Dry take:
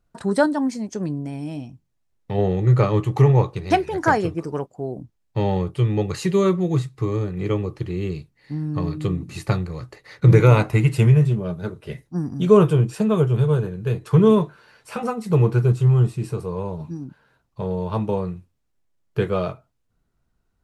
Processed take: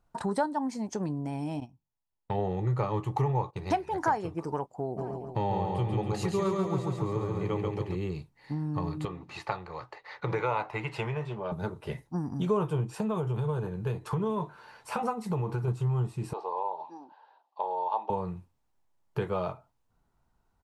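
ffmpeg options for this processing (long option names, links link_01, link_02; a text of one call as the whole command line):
ffmpeg -i in.wav -filter_complex "[0:a]asettb=1/sr,asplit=3[link_01][link_02][link_03];[link_01]atrim=end=1.604[link_04];[link_02]atrim=start=1.6:end=3.68,asetpts=PTS-STARTPTS,afade=type=in:duration=0.004:curve=qsin,afade=type=out:start_time=2.076:duration=0.004:curve=qsin,agate=range=-14dB:threshold=-35dB:ratio=16:release=100:detection=peak[link_05];[link_03]atrim=start=3.676[link_06];[link_04][link_05]acrossfade=duration=0.004:curve1=hsin:curve2=qsin[link_07];[link_07][link_06]acrossfade=duration=0.004:curve1=qsin:curve2=hsin,asplit=3[link_08][link_09][link_10];[link_08]afade=type=out:start_time=4.97:duration=0.02[link_11];[link_09]aecho=1:1:138|276|414|552|690|828|966:0.708|0.382|0.206|0.111|0.0602|0.0325|0.0176,afade=type=in:start_time=4.97:duration=0.02,afade=type=out:start_time=7.94:duration=0.02[link_12];[link_10]afade=type=in:start_time=7.94:duration=0.02[link_13];[link_11][link_12][link_13]amix=inputs=3:normalize=0,asettb=1/sr,asplit=3[link_14][link_15][link_16];[link_14]atrim=end=9.054[link_17];[link_15]atrim=start=9.05:end=11.52,asetpts=PTS-STARTPTS,afade=type=in:duration=0.004:curve=qsin,afade=type=out:start_time=2.466:duration=0.004:curve=qsin,acrossover=split=440 4900:gain=0.178 1 0.112[link_18][link_19][link_20];[link_18][link_19][link_20]amix=inputs=3:normalize=0[link_21];[link_16]atrim=start=11.516[link_22];[link_17][link_21]acrossfade=duration=0.004:curve1=hsin:curve2=qsin[link_23];[link_23][link_22]acrossfade=duration=0.004:curve1=qsin:curve2=hsin,asettb=1/sr,asplit=3[link_24][link_25][link_26];[link_24]atrim=end=12.894[link_27];[link_25]atrim=start=12.89:end=15.68,asetpts=PTS-STARTPTS,afade=type=in:duration=0.004:curve=qsin,afade=type=out:start_time=2.786:duration=0.004:curve=qsin,acompressor=threshold=-17dB:ratio=6:attack=3.2:release=140:knee=1:detection=peak[link_28];[link_26]atrim=start=15.676[link_29];[link_27][link_28]acrossfade=duration=0.004:curve1=hsin:curve2=qsin[link_30];[link_30][link_29]acrossfade=duration=0.004:curve1=qsin:curve2=hsin,asettb=1/sr,asplit=3[link_31][link_32][link_33];[link_31]atrim=end=16.334[link_34];[link_32]atrim=start=16.33:end=18.1,asetpts=PTS-STARTPTS,afade=type=in:duration=0.004:curve=qsin,afade=type=out:start_time=1.766:duration=0.004:curve=qsin,highpass=frequency=430:width=0.5412,highpass=frequency=430:width=1.3066,equalizer=frequency=450:width_type=q:width=4:gain=-4,equalizer=frequency=810:width_type=q:width=4:gain=8,equalizer=frequency=1400:width_type=q:width=4:gain=-9,equalizer=frequency=2200:width_type=q:width=4:gain=-9,lowpass=frequency=4500:width=0.5412,lowpass=frequency=4500:width=1.3066[link_35];[link_33]atrim=start=18.096[link_36];[link_34][link_35]acrossfade=duration=0.004:curve1=hsin:curve2=qsin[link_37];[link_37][link_36]acrossfade=duration=0.004:curve1=qsin:curve2=hsin,equalizer=frequency=890:width=2.2:gain=11.5,acompressor=threshold=-28dB:ratio=2.5,volume=-2.5dB" out.wav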